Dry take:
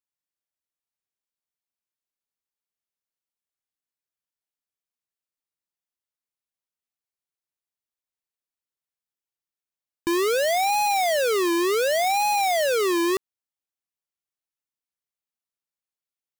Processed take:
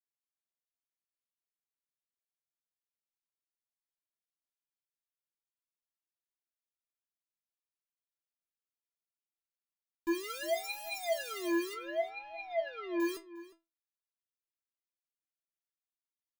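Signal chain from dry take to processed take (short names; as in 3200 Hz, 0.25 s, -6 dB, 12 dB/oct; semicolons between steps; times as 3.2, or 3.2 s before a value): 11.73–13 Bessel low-pass 2100 Hz, order 6; metallic resonator 330 Hz, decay 0.24 s, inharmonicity 0.002; outdoor echo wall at 61 m, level -16 dB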